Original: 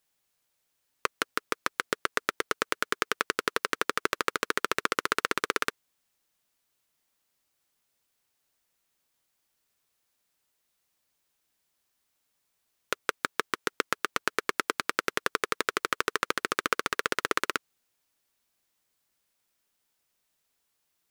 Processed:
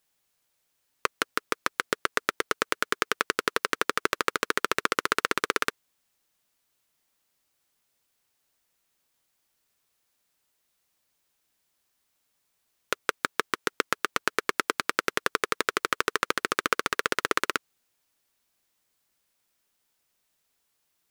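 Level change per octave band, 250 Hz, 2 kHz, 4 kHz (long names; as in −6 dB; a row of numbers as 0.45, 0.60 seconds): +2.0, +2.0, +2.0 decibels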